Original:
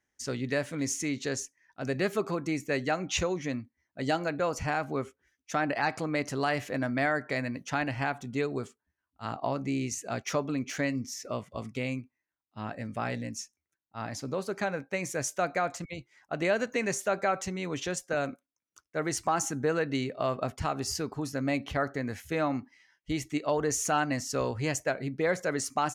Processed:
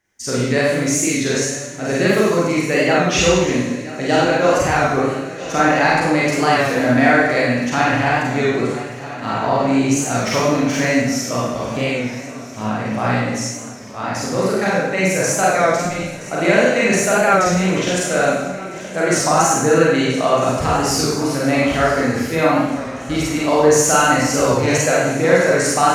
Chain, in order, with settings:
on a send: feedback echo with a long and a short gap by turns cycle 1,294 ms, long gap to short 3 to 1, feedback 61%, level −17 dB
on the sum: four-comb reverb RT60 0.99 s, combs from 33 ms, DRR −6.5 dB
wow of a warped record 33 1/3 rpm, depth 100 cents
level +7.5 dB

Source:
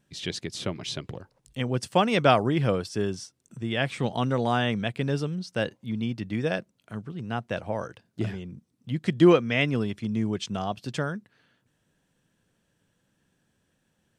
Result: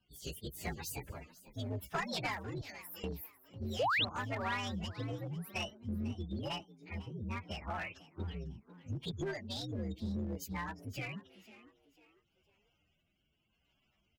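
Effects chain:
partials spread apart or drawn together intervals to 129%
0:02.61–0:03.04: first-order pre-emphasis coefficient 0.97
gate on every frequency bin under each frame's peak −25 dB strong
octave-band graphic EQ 125/250/500/2,000/4,000/8,000 Hz −7/−5/−6/+7/+4/−10 dB
downward compressor 5 to 1, threshold −36 dBFS, peak gain reduction 16 dB
asymmetric clip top −37 dBFS
rotating-speaker cabinet horn 0.85 Hz
0:03.79–0:04.05: sound drawn into the spectrogram rise 430–4,300 Hz −34 dBFS
echo with shifted repeats 498 ms, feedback 35%, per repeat +90 Hz, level −17.5 dB
level +3 dB

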